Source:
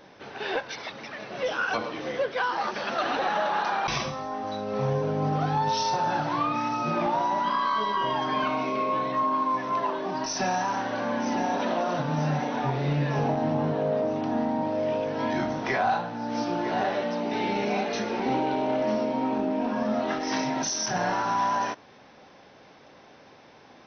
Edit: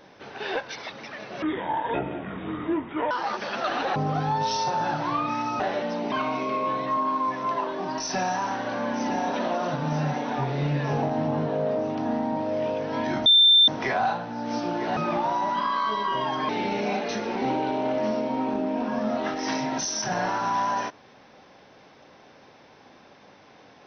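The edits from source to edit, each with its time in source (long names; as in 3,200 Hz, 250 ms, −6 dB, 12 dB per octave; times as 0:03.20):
0:01.42–0:02.45: play speed 61%
0:03.30–0:05.22: remove
0:06.86–0:08.38: swap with 0:16.81–0:17.33
0:15.52: insert tone 3,570 Hz −12.5 dBFS 0.42 s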